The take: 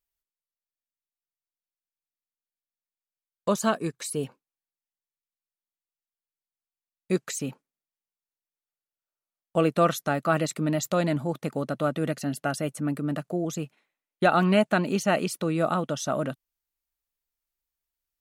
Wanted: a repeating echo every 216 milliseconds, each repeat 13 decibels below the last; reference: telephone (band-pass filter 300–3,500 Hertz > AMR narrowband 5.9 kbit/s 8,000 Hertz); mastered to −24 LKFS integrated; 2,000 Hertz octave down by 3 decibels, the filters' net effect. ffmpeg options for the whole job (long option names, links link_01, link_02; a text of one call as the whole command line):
ffmpeg -i in.wav -af "highpass=300,lowpass=3500,equalizer=frequency=2000:width_type=o:gain=-4,aecho=1:1:216|432|648:0.224|0.0493|0.0108,volume=6dB" -ar 8000 -c:a libopencore_amrnb -b:a 5900 out.amr